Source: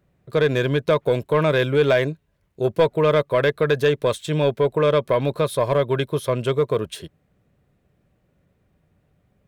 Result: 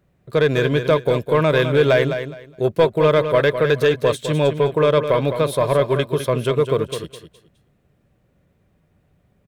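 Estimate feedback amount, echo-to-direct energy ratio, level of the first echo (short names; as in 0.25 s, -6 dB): 21%, -9.0 dB, -9.0 dB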